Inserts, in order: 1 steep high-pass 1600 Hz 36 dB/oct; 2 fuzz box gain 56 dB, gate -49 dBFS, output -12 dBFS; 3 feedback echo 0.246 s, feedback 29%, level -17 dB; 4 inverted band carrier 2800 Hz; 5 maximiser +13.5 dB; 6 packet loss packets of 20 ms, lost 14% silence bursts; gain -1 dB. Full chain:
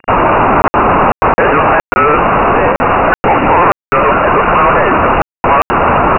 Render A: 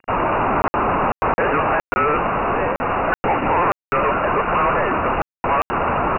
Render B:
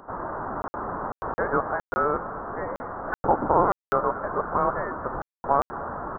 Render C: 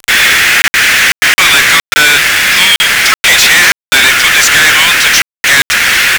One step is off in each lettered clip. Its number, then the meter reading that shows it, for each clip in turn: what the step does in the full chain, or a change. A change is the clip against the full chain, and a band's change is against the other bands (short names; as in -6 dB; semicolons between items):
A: 5, crest factor change +3.0 dB; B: 2, crest factor change +14.0 dB; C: 4, 4 kHz band +33.5 dB